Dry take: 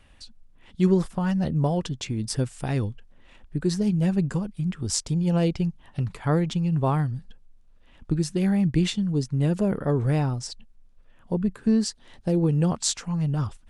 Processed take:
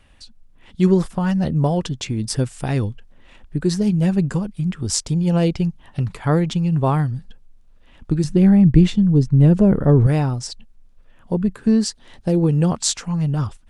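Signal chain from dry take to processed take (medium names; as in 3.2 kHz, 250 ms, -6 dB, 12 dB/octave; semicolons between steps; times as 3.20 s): 8.24–10.07 s: tilt EQ -2.5 dB/octave; level rider gain up to 3 dB; trim +2 dB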